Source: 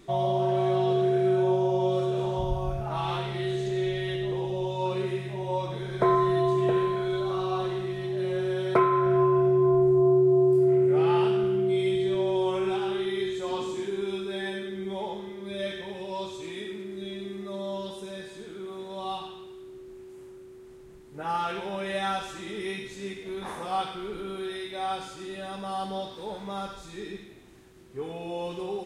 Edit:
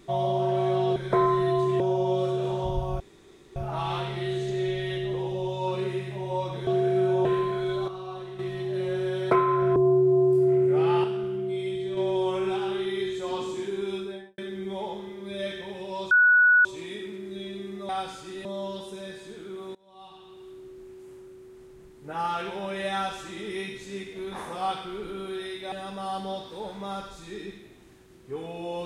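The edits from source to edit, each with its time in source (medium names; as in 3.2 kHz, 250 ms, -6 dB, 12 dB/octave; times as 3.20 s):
0.96–1.54 s: swap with 5.85–6.69 s
2.74 s: insert room tone 0.56 s
7.32–7.83 s: gain -8.5 dB
9.20–9.96 s: delete
11.24–12.17 s: gain -5 dB
14.17–14.58 s: studio fade out
16.31 s: add tone 1.47 kHz -14.5 dBFS 0.54 s
18.85–19.58 s: fade in quadratic, from -24 dB
24.82–25.38 s: move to 17.55 s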